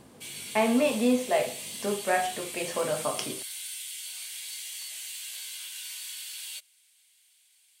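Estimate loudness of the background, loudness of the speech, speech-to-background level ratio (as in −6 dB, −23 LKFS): −36.5 LKFS, −28.5 LKFS, 8.0 dB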